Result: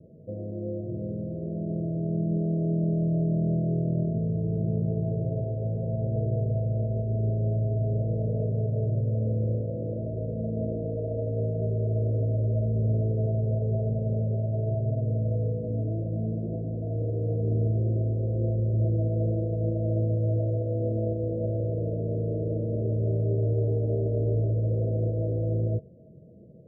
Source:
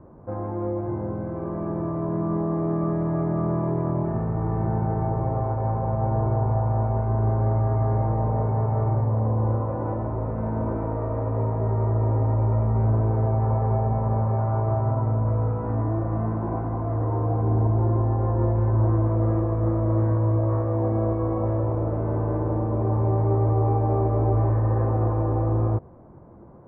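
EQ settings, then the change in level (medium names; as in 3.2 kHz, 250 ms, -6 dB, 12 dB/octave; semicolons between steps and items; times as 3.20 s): high-pass 66 Hz; rippled Chebyshev low-pass 660 Hz, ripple 9 dB; +1.5 dB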